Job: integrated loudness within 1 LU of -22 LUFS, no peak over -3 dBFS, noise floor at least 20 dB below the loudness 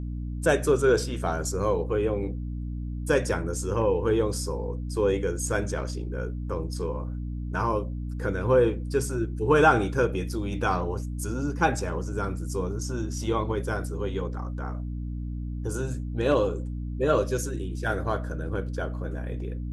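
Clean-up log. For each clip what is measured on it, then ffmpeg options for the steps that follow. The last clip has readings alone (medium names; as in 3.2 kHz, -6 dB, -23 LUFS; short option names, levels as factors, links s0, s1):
hum 60 Hz; highest harmonic 300 Hz; hum level -30 dBFS; loudness -27.5 LUFS; peak level -7.5 dBFS; loudness target -22.0 LUFS
-> -af "bandreject=f=60:t=h:w=6,bandreject=f=120:t=h:w=6,bandreject=f=180:t=h:w=6,bandreject=f=240:t=h:w=6,bandreject=f=300:t=h:w=6"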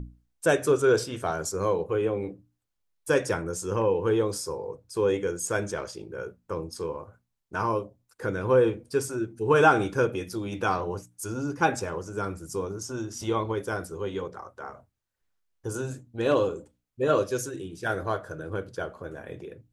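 hum not found; loudness -28.0 LUFS; peak level -7.5 dBFS; loudness target -22.0 LUFS
-> -af "volume=2,alimiter=limit=0.708:level=0:latency=1"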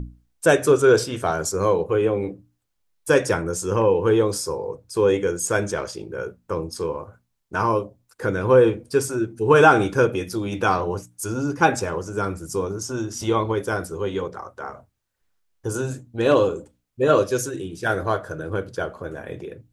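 loudness -22.0 LUFS; peak level -3.0 dBFS; noise floor -73 dBFS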